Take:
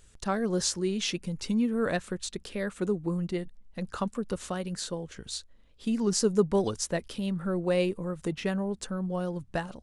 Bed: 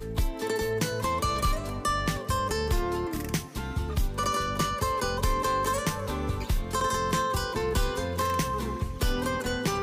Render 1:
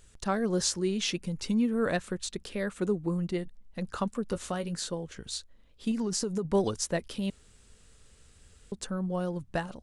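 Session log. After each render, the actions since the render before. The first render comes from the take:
0:04.28–0:04.88: double-tracking delay 18 ms −11.5 dB
0:05.91–0:06.45: downward compressor 12 to 1, threshold −26 dBFS
0:07.30–0:08.72: fill with room tone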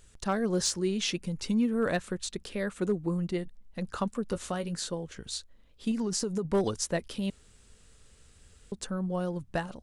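hard clipping −19.5 dBFS, distortion −25 dB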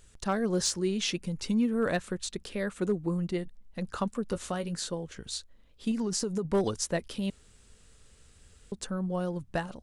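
no processing that can be heard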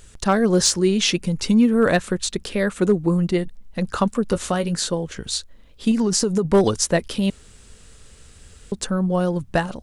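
level +11 dB

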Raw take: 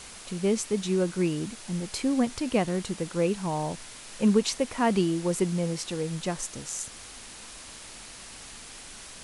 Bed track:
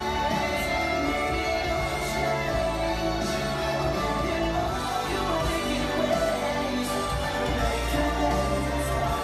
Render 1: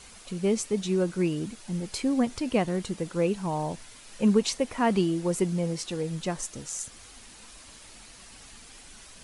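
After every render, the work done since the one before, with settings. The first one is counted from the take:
broadband denoise 7 dB, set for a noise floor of −45 dBFS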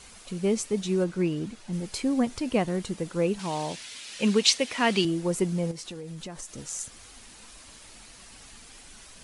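0:01.04–0:01.73: high-shelf EQ 7,900 Hz −11.5 dB
0:03.39–0:05.05: meter weighting curve D
0:05.71–0:06.58: downward compressor, threshold −35 dBFS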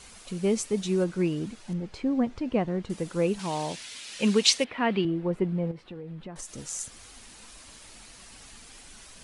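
0:01.73–0:02.90: head-to-tape spacing loss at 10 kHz 25 dB
0:04.64–0:06.36: high-frequency loss of the air 470 metres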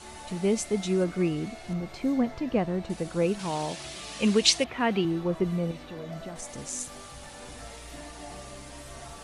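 mix in bed track −18.5 dB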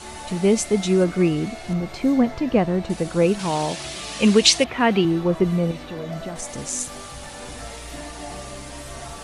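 level +7.5 dB
brickwall limiter −2 dBFS, peak gain reduction 3 dB

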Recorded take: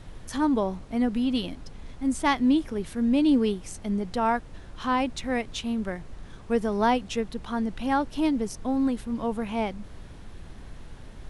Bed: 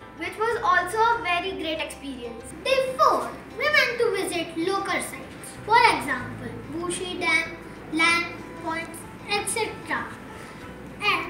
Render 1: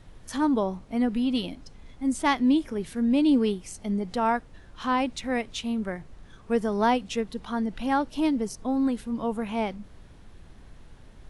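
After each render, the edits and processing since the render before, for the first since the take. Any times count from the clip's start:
noise reduction from a noise print 6 dB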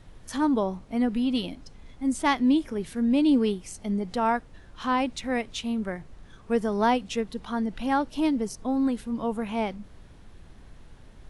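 no processing that can be heard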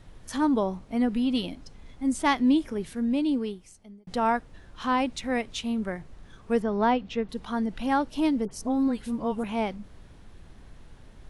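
0:02.69–0:04.07: fade out
0:06.62–0:07.29: high-frequency loss of the air 190 metres
0:08.45–0:09.44: all-pass dispersion highs, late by 64 ms, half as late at 1,500 Hz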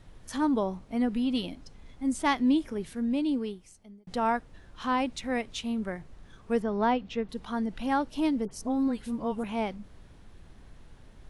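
level −2.5 dB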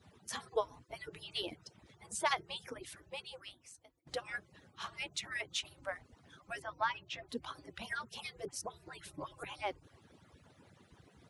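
harmonic-percussive split with one part muted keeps percussive
high-pass filter 130 Hz 6 dB per octave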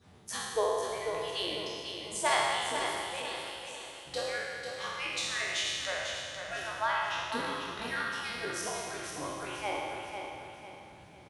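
peak hold with a decay on every bin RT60 1.99 s
repeating echo 495 ms, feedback 39%, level −7 dB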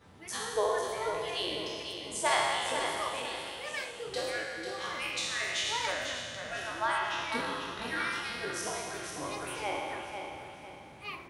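mix in bed −19 dB

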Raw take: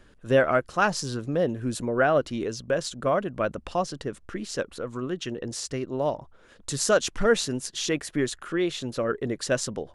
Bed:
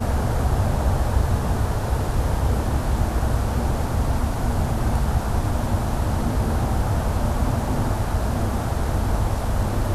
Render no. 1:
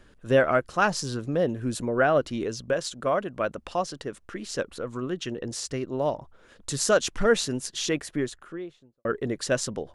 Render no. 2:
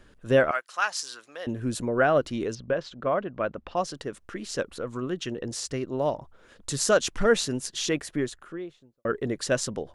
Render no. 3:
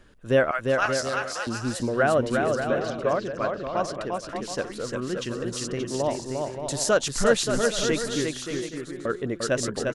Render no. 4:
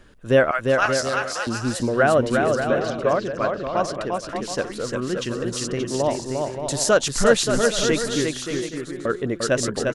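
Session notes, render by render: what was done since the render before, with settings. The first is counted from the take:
0:02.73–0:04.46: low-shelf EQ 240 Hz −6.5 dB; 0:07.85–0:09.05: fade out and dull
0:00.51–0:01.47: high-pass filter 1,200 Hz; 0:02.55–0:03.77: high-frequency loss of the air 240 metres
bouncing-ball delay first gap 350 ms, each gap 0.65×, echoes 5
level +4 dB

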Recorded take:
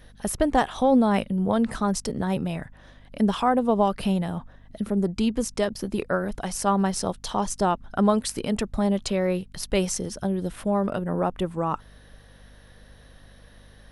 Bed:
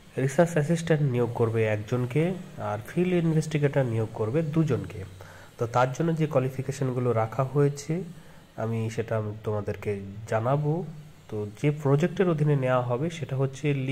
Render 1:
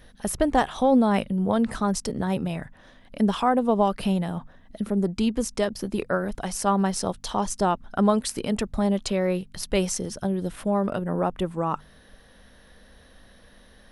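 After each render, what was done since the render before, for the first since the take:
hum removal 50 Hz, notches 3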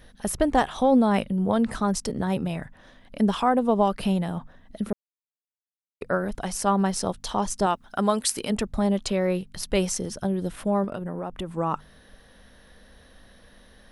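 0:04.93–0:06.01: silence
0:07.66–0:08.50: spectral tilt +2 dB per octave
0:10.84–0:11.49: downward compressor, threshold −27 dBFS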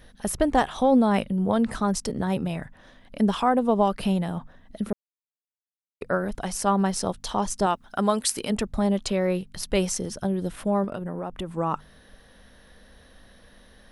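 no processing that can be heard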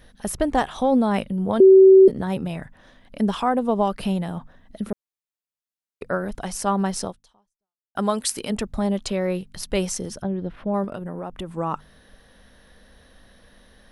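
0:01.60–0:02.08: beep over 382 Hz −6.5 dBFS
0:07.04–0:07.95: fade out exponential
0:10.22–0:10.74: high-frequency loss of the air 330 metres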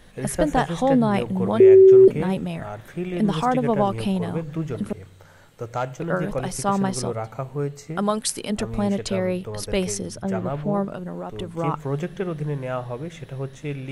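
mix in bed −4 dB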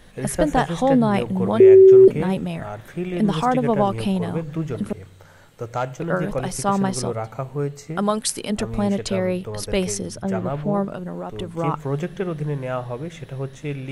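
level +1.5 dB

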